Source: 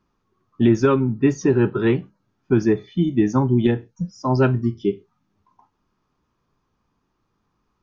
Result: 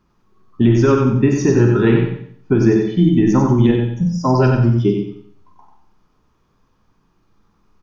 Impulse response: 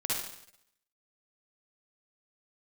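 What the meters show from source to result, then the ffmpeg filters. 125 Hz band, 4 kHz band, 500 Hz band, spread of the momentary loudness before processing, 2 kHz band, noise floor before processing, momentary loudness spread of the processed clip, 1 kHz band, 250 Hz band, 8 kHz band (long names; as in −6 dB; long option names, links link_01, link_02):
+7.5 dB, +5.0 dB, +4.0 dB, 8 LU, +4.0 dB, −73 dBFS, 6 LU, +4.5 dB, +5.0 dB, can't be measured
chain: -filter_complex "[0:a]acompressor=threshold=-17dB:ratio=6,aecho=1:1:92|184|276|368:0.631|0.208|0.0687|0.0227,asplit=2[link_01][link_02];[1:a]atrim=start_sample=2205,asetrate=61740,aresample=44100,lowshelf=frequency=130:gain=11.5[link_03];[link_02][link_03]afir=irnorm=-1:irlink=0,volume=-6.5dB[link_04];[link_01][link_04]amix=inputs=2:normalize=0,volume=3.5dB"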